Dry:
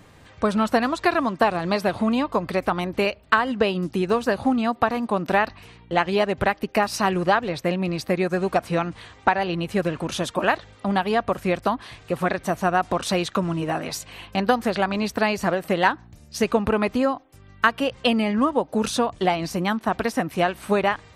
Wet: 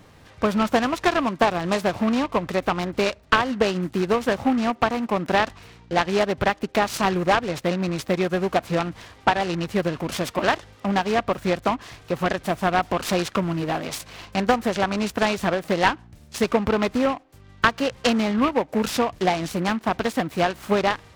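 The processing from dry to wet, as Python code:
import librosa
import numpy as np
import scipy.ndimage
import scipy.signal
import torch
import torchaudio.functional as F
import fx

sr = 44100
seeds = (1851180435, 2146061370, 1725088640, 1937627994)

y = fx.noise_mod_delay(x, sr, seeds[0], noise_hz=1300.0, depth_ms=0.049)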